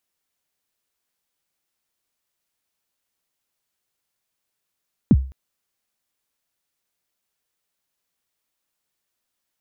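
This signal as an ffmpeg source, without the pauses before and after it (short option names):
-f lavfi -i "aevalsrc='0.501*pow(10,-3*t/0.38)*sin(2*PI*(290*0.045/log(66/290)*(exp(log(66/290)*min(t,0.045)/0.045)-1)+66*max(t-0.045,0)))':d=0.21:s=44100"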